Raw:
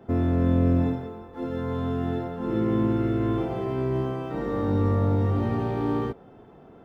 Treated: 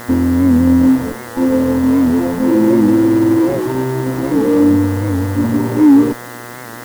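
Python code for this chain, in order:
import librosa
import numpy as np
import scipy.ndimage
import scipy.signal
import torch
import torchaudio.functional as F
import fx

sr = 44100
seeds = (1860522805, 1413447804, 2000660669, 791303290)

p1 = fx.spec_expand(x, sr, power=2.1)
p2 = fx.schmitt(p1, sr, flips_db=-33.0)
p3 = p1 + (p2 * 10.0 ** (-5.0 / 20.0))
p4 = fx.small_body(p3, sr, hz=(290.0, 510.0, 900.0), ring_ms=35, db=18)
p5 = fx.quant_dither(p4, sr, seeds[0], bits=6, dither='triangular')
p6 = fx.dmg_buzz(p5, sr, base_hz=120.0, harmonics=17, level_db=-30.0, tilt_db=-1, odd_only=False)
p7 = fx.record_warp(p6, sr, rpm=78.0, depth_cents=100.0)
y = p7 * 10.0 ** (-2.0 / 20.0)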